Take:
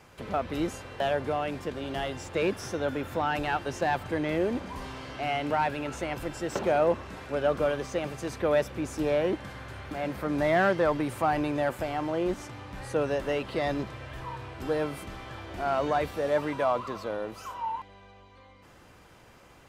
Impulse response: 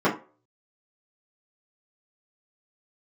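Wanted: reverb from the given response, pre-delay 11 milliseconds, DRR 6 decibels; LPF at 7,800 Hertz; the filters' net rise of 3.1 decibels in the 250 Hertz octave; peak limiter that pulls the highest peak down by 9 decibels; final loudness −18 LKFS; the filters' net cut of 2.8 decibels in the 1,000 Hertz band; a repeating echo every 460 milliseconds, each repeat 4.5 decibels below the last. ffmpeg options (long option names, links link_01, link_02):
-filter_complex "[0:a]lowpass=7800,equalizer=frequency=250:width_type=o:gain=4.5,equalizer=frequency=1000:width_type=o:gain=-4.5,alimiter=limit=-23dB:level=0:latency=1,aecho=1:1:460|920|1380|1840|2300|2760|3220|3680|4140:0.596|0.357|0.214|0.129|0.0772|0.0463|0.0278|0.0167|0.01,asplit=2[link_01][link_02];[1:a]atrim=start_sample=2205,adelay=11[link_03];[link_02][link_03]afir=irnorm=-1:irlink=0,volume=-23dB[link_04];[link_01][link_04]amix=inputs=2:normalize=0,volume=11.5dB"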